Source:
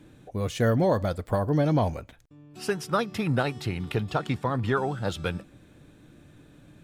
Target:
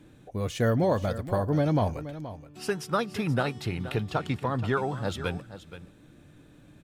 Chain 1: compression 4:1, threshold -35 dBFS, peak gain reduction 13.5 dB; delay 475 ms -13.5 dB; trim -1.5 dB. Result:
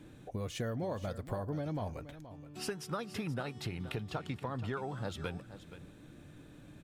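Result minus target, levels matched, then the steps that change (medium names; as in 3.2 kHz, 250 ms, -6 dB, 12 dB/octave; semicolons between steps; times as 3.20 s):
compression: peak gain reduction +13.5 dB
remove: compression 4:1, threshold -35 dBFS, peak gain reduction 13.5 dB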